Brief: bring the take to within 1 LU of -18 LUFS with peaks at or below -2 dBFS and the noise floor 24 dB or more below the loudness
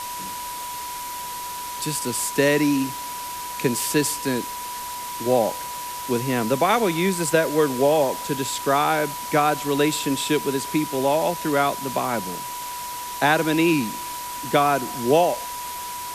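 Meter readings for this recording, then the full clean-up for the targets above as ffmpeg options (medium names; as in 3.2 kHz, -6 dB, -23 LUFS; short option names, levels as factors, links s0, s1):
steady tone 980 Hz; tone level -31 dBFS; noise floor -32 dBFS; noise floor target -47 dBFS; loudness -23.0 LUFS; peak level -5.0 dBFS; loudness target -18.0 LUFS
-> -af "bandreject=f=980:w=30"
-af "afftdn=nr=15:nf=-32"
-af "volume=1.78,alimiter=limit=0.794:level=0:latency=1"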